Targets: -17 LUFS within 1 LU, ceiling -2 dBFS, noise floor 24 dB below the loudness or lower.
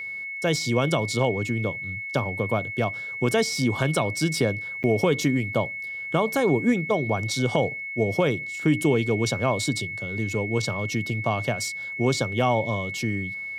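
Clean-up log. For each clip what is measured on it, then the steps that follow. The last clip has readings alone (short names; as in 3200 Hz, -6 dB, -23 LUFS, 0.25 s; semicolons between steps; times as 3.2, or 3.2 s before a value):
dropouts 1; longest dropout 8.9 ms; steady tone 2200 Hz; tone level -31 dBFS; loudness -25.0 LUFS; peak -8.0 dBFS; loudness target -17.0 LUFS
-> interpolate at 4.83, 8.9 ms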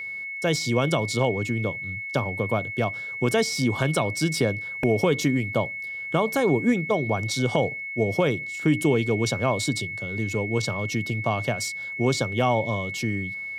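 dropouts 0; steady tone 2200 Hz; tone level -31 dBFS
-> notch 2200 Hz, Q 30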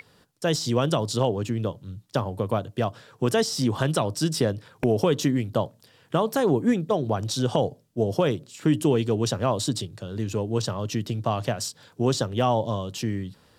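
steady tone none; loudness -26.0 LUFS; peak -7.5 dBFS; loudness target -17.0 LUFS
-> gain +9 dB; limiter -2 dBFS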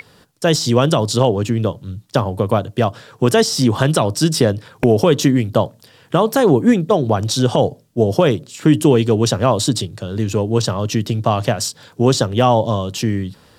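loudness -17.0 LUFS; peak -2.0 dBFS; noise floor -51 dBFS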